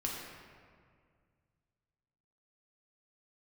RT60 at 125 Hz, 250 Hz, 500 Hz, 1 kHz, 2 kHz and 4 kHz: 3.0, 2.4, 2.1, 1.9, 1.7, 1.2 s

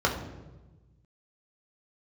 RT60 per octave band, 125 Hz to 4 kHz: 1.8, 1.5, 1.3, 1.0, 0.85, 0.75 s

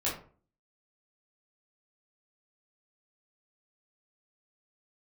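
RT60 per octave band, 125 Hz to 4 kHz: 0.55, 0.50, 0.45, 0.40, 0.30, 0.25 s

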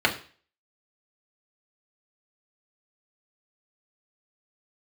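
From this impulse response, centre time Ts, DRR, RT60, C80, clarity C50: 13 ms, -1.0 dB, 0.40 s, 16.5 dB, 12.5 dB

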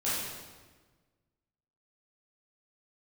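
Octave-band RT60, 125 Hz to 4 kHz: 1.8, 1.6, 1.4, 1.3, 1.2, 1.1 s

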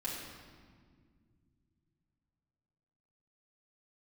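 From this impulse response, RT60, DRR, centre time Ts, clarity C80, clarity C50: 1.9 s, -6.5 dB, 81 ms, 3.0 dB, 1.0 dB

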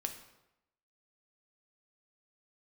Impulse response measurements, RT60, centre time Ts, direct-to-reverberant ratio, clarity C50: 0.90 s, 16 ms, 5.0 dB, 9.5 dB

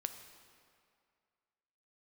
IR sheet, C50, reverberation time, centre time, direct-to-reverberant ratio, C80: 9.0 dB, 2.2 s, 23 ms, 7.5 dB, 10.0 dB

